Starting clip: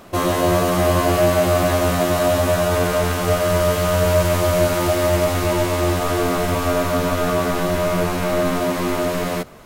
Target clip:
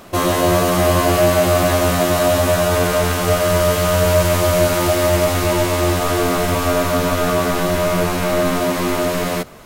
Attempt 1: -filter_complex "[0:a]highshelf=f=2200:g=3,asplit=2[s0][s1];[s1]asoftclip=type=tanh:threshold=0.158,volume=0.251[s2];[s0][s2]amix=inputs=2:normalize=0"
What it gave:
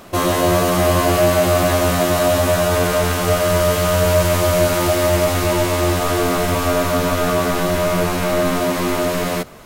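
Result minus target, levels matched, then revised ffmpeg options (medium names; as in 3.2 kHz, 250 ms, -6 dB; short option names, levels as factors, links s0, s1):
saturation: distortion +11 dB
-filter_complex "[0:a]highshelf=f=2200:g=3,asplit=2[s0][s1];[s1]asoftclip=type=tanh:threshold=0.422,volume=0.251[s2];[s0][s2]amix=inputs=2:normalize=0"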